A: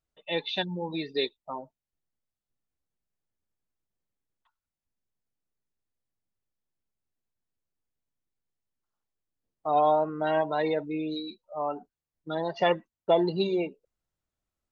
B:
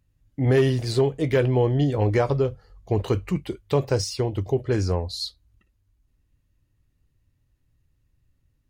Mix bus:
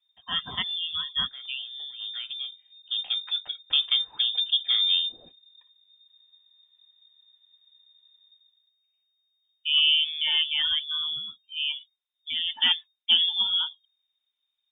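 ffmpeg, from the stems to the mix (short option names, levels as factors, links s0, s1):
-filter_complex "[0:a]volume=1.12,asplit=2[s0][s1];[1:a]dynaudnorm=f=130:g=7:m=3.35,volume=0.266[s2];[s1]apad=whole_len=383299[s3];[s2][s3]sidechaincompress=threshold=0.00501:ratio=4:attack=5.2:release=1490[s4];[s0][s4]amix=inputs=2:normalize=0,lowshelf=f=74:g=9.5,lowpass=f=3100:t=q:w=0.5098,lowpass=f=3100:t=q:w=0.6013,lowpass=f=3100:t=q:w=0.9,lowpass=f=3100:t=q:w=2.563,afreqshift=-3700"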